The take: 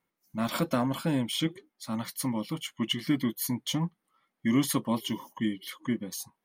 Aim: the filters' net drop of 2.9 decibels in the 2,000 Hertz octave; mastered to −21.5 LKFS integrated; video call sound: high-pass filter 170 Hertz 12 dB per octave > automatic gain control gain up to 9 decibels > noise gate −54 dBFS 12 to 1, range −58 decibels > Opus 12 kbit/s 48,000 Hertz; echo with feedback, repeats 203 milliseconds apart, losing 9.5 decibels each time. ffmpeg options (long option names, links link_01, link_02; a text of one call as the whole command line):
ffmpeg -i in.wav -af "highpass=170,equalizer=frequency=2000:width_type=o:gain=-3.5,aecho=1:1:203|406|609|812:0.335|0.111|0.0365|0.012,dynaudnorm=maxgain=9dB,agate=range=-58dB:threshold=-54dB:ratio=12,volume=11dB" -ar 48000 -c:a libopus -b:a 12k out.opus